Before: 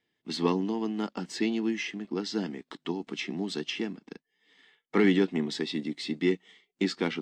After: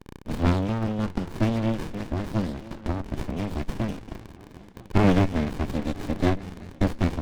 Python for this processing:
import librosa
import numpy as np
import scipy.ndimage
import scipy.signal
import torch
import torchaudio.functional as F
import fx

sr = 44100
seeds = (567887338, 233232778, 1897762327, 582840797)

y = fx.echo_stepped(x, sr, ms=199, hz=2900.0, octaves=-0.7, feedback_pct=70, wet_db=-6.0)
y = fx.dmg_crackle(y, sr, seeds[0], per_s=78.0, level_db=-40.0)
y = fx.running_max(y, sr, window=65)
y = y * 10.0 ** (7.0 / 20.0)